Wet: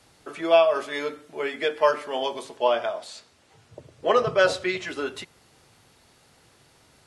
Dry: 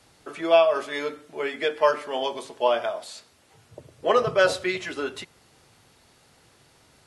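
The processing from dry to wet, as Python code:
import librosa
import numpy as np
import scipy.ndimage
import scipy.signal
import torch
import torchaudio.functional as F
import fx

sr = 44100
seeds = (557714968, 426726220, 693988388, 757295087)

y = fx.lowpass(x, sr, hz=8700.0, slope=12, at=(2.57, 4.88))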